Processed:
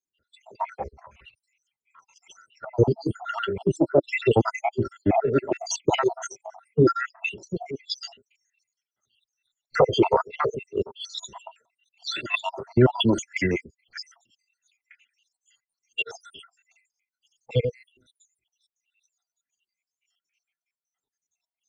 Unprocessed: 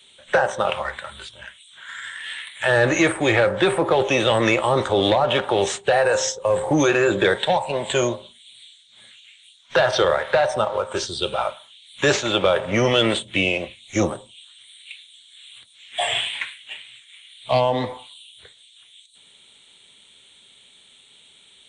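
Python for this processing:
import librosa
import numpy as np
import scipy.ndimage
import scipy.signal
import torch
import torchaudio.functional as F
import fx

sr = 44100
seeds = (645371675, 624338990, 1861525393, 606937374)

y = fx.spec_dropout(x, sr, seeds[0], share_pct=75)
y = fx.formant_shift(y, sr, semitones=-5)
y = fx.band_widen(y, sr, depth_pct=100)
y = F.gain(torch.from_numpy(y), -2.0).numpy()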